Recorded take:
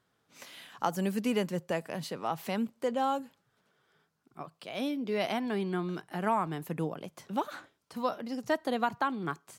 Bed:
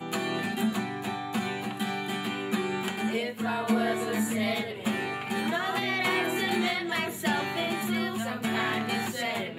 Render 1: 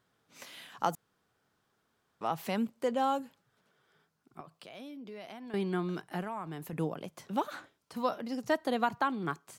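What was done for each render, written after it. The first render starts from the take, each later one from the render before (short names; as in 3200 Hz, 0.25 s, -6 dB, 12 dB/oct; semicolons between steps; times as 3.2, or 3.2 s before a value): 0.95–2.21 room tone; 4.4–5.54 compressor 3:1, threshold -47 dBFS; 6.21–6.73 compressor 2.5:1, threshold -39 dBFS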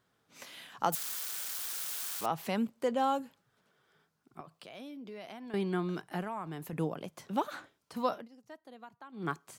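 0.92–2.26 switching spikes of -28 dBFS; 8.14–9.26 dip -21 dB, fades 0.14 s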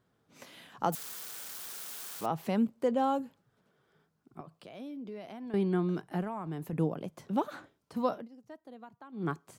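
tilt shelf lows +5 dB, about 790 Hz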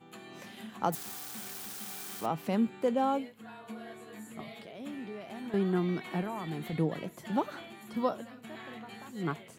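add bed -18.5 dB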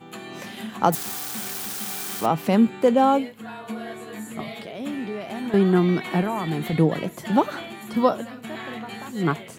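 gain +11 dB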